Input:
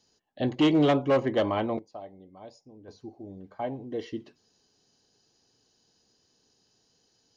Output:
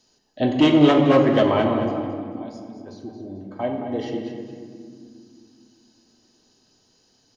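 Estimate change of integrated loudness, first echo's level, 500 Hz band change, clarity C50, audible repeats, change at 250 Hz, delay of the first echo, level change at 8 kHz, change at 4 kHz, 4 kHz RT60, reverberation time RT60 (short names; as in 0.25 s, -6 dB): +7.5 dB, -10.0 dB, +7.0 dB, 3.5 dB, 2, +8.5 dB, 0.221 s, n/a, +7.5 dB, 1.3 s, 2.1 s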